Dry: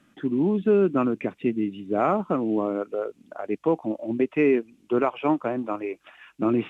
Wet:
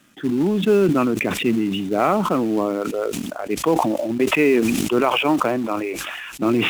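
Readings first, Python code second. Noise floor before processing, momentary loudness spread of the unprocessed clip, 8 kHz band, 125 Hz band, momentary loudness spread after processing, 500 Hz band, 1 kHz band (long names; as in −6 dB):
−62 dBFS, 11 LU, can't be measured, +6.0 dB, 9 LU, +4.0 dB, +6.5 dB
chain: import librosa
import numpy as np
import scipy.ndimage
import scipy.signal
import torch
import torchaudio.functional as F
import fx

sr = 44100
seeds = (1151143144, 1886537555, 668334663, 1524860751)

p1 = fx.high_shelf(x, sr, hz=2700.0, db=10.0)
p2 = fx.quant_companded(p1, sr, bits=4)
p3 = p1 + (p2 * 10.0 ** (-9.0 / 20.0))
y = fx.sustainer(p3, sr, db_per_s=24.0)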